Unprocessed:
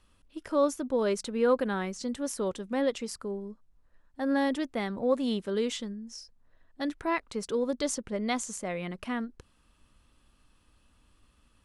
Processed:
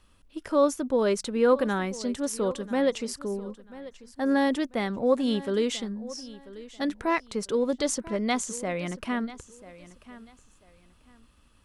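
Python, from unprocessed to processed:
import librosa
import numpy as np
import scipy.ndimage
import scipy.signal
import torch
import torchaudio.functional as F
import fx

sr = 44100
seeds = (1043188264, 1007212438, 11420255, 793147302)

y = fx.echo_feedback(x, sr, ms=990, feedback_pct=25, wet_db=-17.5)
y = F.gain(torch.from_numpy(y), 3.5).numpy()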